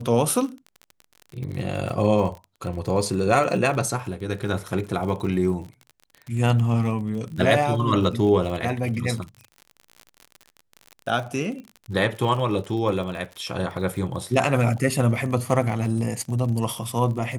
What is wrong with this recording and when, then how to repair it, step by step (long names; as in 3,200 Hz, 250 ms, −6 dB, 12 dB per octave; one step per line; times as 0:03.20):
surface crackle 43 per second −31 dBFS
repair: click removal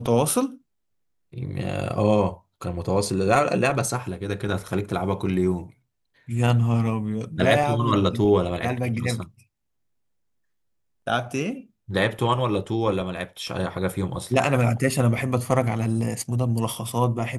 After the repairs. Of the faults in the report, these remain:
none of them is left